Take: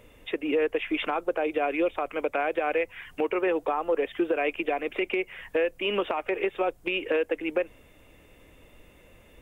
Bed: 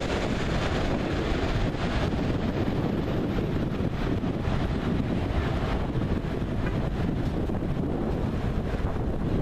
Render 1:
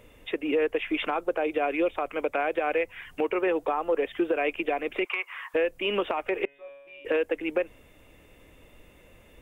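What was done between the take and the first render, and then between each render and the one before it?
5.05–5.54 resonant high-pass 1100 Hz, resonance Q 6.4; 6.45–7.05 resonator 140 Hz, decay 1.3 s, mix 100%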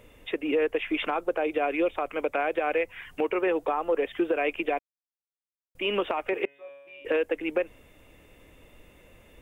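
4.79–5.75 mute; 6.33–7.02 HPF 83 Hz 24 dB/oct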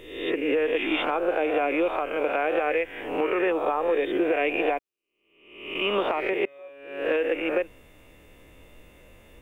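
spectral swells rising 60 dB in 0.77 s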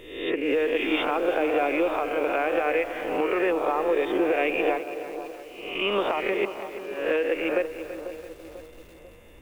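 analogue delay 0.493 s, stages 4096, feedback 47%, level -11.5 dB; lo-fi delay 0.333 s, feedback 55%, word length 7-bit, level -13 dB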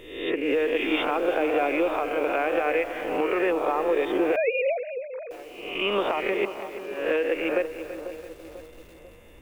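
4.36–5.31 sine-wave speech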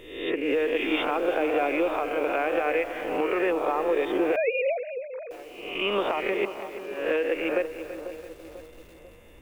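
gain -1 dB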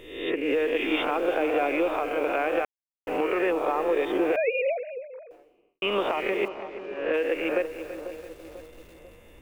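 2.65–3.07 mute; 4.56–5.82 studio fade out; 6.48–7.14 air absorption 170 m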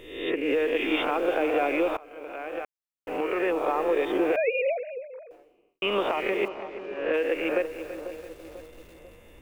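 1.97–3.7 fade in, from -22 dB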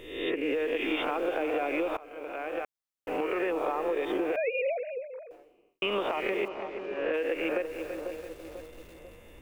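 compressor, threshold -26 dBFS, peak gain reduction 6.5 dB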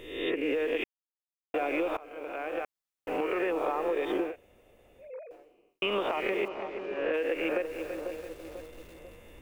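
0.84–1.54 mute; 4.29–5.06 room tone, crossfade 0.16 s

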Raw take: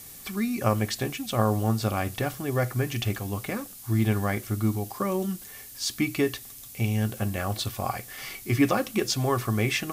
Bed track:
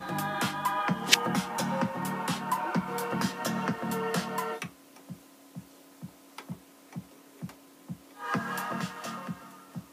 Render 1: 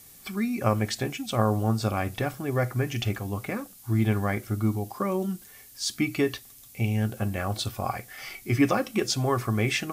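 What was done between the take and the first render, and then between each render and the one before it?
noise print and reduce 6 dB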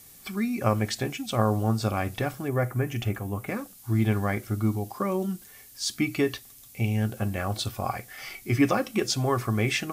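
2.48–3.48 bell 4500 Hz -9 dB 1.2 oct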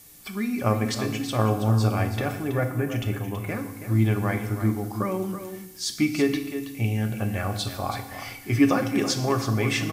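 echo 0.326 s -10.5 dB; FDN reverb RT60 1 s, low-frequency decay 1.5×, high-frequency decay 0.95×, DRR 6.5 dB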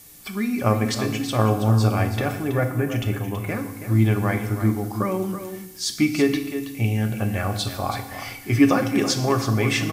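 gain +3 dB

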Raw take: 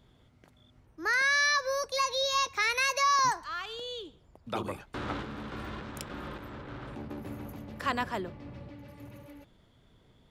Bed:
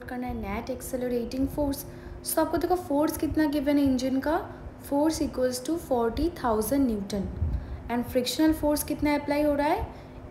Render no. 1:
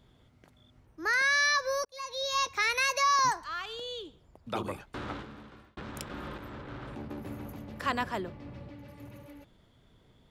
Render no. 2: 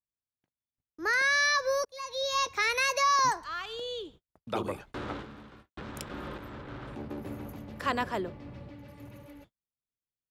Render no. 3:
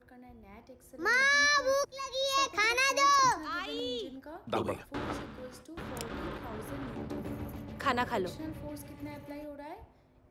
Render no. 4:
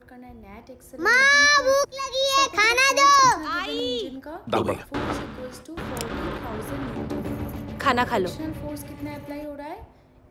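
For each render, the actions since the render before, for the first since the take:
1.85–2.45 fade in; 4.8–5.77 fade out
gate -53 dBFS, range -44 dB; dynamic EQ 450 Hz, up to +4 dB, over -45 dBFS, Q 1.3
add bed -20 dB
gain +9 dB

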